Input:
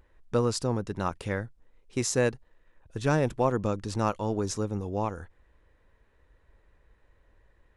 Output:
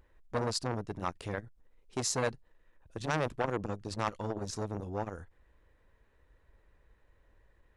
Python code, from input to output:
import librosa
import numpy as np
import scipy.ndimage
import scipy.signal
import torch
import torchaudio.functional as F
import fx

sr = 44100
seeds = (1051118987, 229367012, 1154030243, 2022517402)

y = fx.dynamic_eq(x, sr, hz=4400.0, q=3.3, threshold_db=-53.0, ratio=4.0, max_db=6)
y = fx.transformer_sat(y, sr, knee_hz=1400.0)
y = y * librosa.db_to_amplitude(-2.5)